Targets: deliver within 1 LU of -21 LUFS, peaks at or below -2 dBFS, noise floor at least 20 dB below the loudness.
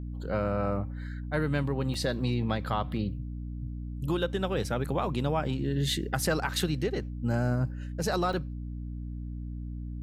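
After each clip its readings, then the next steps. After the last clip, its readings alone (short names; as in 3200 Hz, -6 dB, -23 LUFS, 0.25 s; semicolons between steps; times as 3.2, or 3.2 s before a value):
dropouts 2; longest dropout 3.2 ms; hum 60 Hz; harmonics up to 300 Hz; hum level -34 dBFS; loudness -31.0 LUFS; peak -13.0 dBFS; loudness target -21.0 LUFS
-> interpolate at 1.94/8.33, 3.2 ms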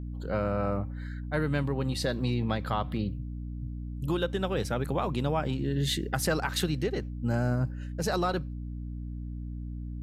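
dropouts 0; hum 60 Hz; harmonics up to 300 Hz; hum level -34 dBFS
-> notches 60/120/180/240/300 Hz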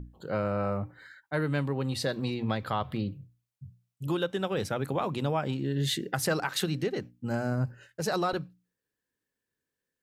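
hum none; loudness -31.0 LUFS; peak -13.0 dBFS; loudness target -21.0 LUFS
-> gain +10 dB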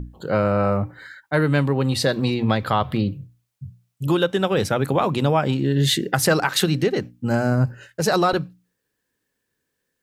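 loudness -21.0 LUFS; peak -3.0 dBFS; noise floor -77 dBFS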